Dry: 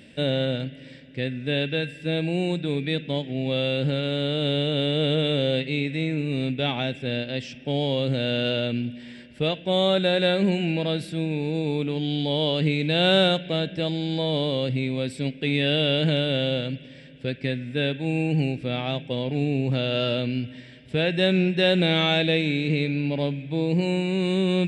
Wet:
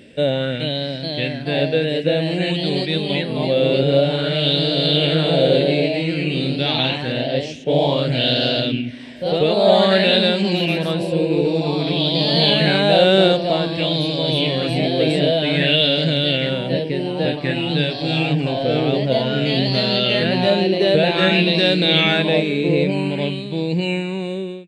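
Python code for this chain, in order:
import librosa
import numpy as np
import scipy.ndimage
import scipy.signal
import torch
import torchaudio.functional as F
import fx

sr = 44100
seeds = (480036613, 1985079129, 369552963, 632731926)

y = fx.fade_out_tail(x, sr, length_s=0.74)
y = fx.echo_pitch(y, sr, ms=436, semitones=1, count=3, db_per_echo=-3.0)
y = fx.bell_lfo(y, sr, hz=0.53, low_hz=410.0, high_hz=4900.0, db=9)
y = y * 10.0 ** (2.0 / 20.0)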